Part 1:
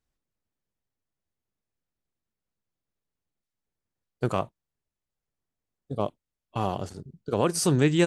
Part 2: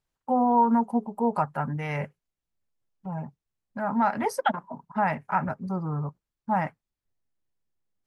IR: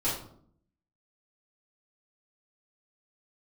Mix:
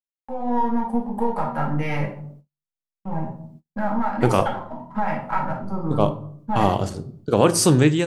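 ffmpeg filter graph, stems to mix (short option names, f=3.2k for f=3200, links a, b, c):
-filter_complex "[0:a]volume=-4.5dB,asplit=2[a][b];[b]volume=-18.5dB[c];[1:a]aeval=exprs='if(lt(val(0),0),0.708*val(0),val(0))':c=same,acompressor=threshold=-28dB:ratio=4,volume=-13dB,asplit=2[d][e];[e]volume=-3.5dB[f];[2:a]atrim=start_sample=2205[g];[c][f]amix=inputs=2:normalize=0[h];[h][g]afir=irnorm=-1:irlink=0[i];[a][d][i]amix=inputs=3:normalize=0,agate=range=-40dB:threshold=-58dB:ratio=16:detection=peak,dynaudnorm=f=190:g=5:m=14dB"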